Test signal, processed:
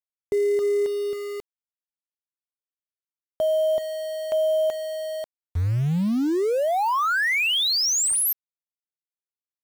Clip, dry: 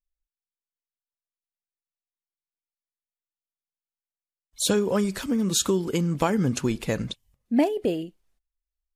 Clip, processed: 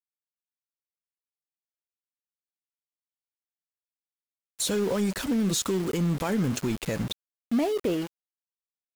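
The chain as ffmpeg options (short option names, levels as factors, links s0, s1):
-af "alimiter=limit=0.126:level=0:latency=1:release=49,aeval=exprs='0.126*(cos(1*acos(clip(val(0)/0.126,-1,1)))-cos(1*PI/2))+0.00891*(cos(5*acos(clip(val(0)/0.126,-1,1)))-cos(5*PI/2))':c=same,aeval=exprs='val(0)*gte(abs(val(0)),0.0211)':c=same"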